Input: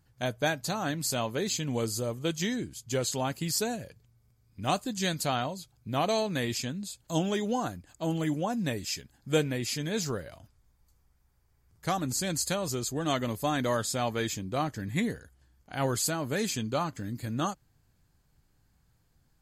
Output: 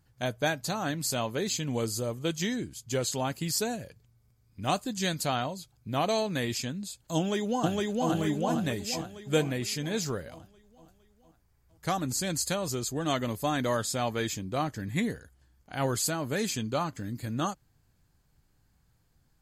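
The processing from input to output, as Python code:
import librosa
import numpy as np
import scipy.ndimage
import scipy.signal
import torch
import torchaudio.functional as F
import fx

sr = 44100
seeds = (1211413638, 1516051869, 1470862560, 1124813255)

y = fx.echo_throw(x, sr, start_s=7.17, length_s=0.92, ms=460, feedback_pct=55, wet_db=-0.5)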